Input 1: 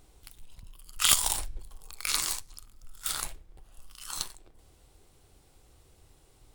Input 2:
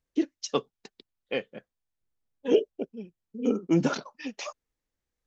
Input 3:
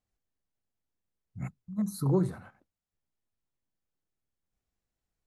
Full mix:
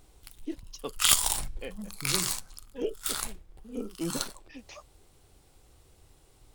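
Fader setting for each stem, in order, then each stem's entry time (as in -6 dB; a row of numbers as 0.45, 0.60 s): +0.5, -10.5, -11.0 dB; 0.00, 0.30, 0.00 s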